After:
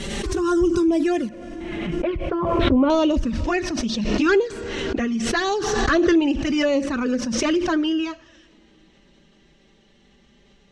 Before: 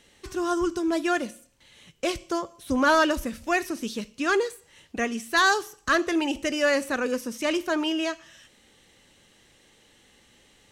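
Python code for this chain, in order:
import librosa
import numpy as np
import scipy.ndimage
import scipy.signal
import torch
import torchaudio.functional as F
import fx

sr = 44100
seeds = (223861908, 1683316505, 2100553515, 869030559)

y = fx.low_shelf(x, sr, hz=430.0, db=11.5)
y = fx.env_flanger(y, sr, rest_ms=5.3, full_db=-14.0)
y = fx.lowpass(y, sr, hz=fx.steps((0.0, 9900.0), (1.29, 2500.0), (2.9, 6000.0)), slope=24)
y = fx.rev_double_slope(y, sr, seeds[0], early_s=0.45, late_s=4.8, knee_db=-18, drr_db=20.0)
y = fx.pre_swell(y, sr, db_per_s=23.0)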